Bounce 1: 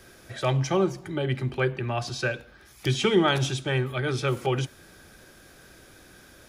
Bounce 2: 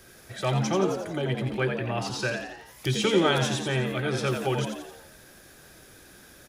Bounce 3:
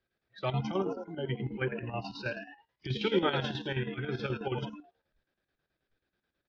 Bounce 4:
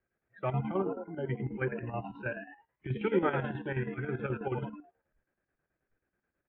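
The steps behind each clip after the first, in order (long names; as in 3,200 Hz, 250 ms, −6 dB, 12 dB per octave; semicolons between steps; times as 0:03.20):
high-shelf EQ 7,800 Hz +6.5 dB; on a send: echo with shifted repeats 87 ms, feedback 52%, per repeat +82 Hz, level −6 dB; on the sum: level −2 dB
noise reduction from a noise print of the clip's start 24 dB; Butterworth low-pass 4,500 Hz 36 dB per octave; square-wave tremolo 9.3 Hz, depth 60%, duty 65%; level −5 dB
inverse Chebyshev low-pass filter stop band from 4,400 Hz, stop band 40 dB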